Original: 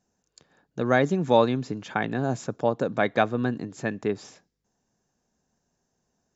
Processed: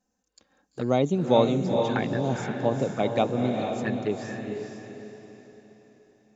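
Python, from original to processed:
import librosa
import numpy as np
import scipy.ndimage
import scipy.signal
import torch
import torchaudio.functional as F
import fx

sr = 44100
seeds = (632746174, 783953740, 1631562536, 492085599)

y = fx.env_flanger(x, sr, rest_ms=3.9, full_db=-21.5)
y = fx.echo_diffused(y, sr, ms=457, feedback_pct=42, wet_db=-4.0)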